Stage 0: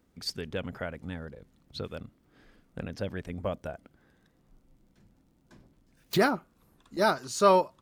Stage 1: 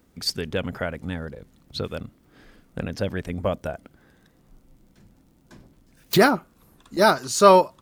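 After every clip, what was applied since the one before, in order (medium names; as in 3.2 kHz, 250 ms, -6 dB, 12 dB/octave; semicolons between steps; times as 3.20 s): treble shelf 7.5 kHz +4.5 dB; trim +7.5 dB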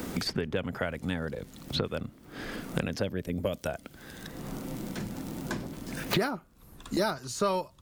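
time-frequency box 3.08–3.54 s, 640–11000 Hz -8 dB; three bands compressed up and down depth 100%; trim -5 dB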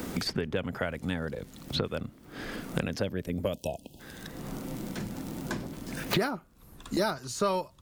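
spectral selection erased 3.54–4.00 s, 990–2500 Hz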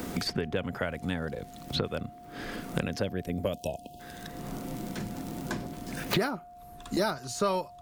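whistle 710 Hz -47 dBFS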